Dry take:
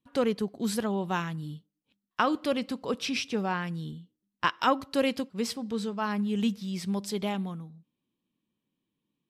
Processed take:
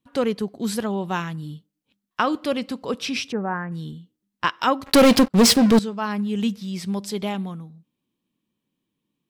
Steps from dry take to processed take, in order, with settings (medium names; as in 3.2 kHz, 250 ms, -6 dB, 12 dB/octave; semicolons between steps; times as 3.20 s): 3.32–3.72 s: Chebyshev low-pass 1.8 kHz, order 4; 4.86–5.79 s: waveshaping leveller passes 5; trim +4 dB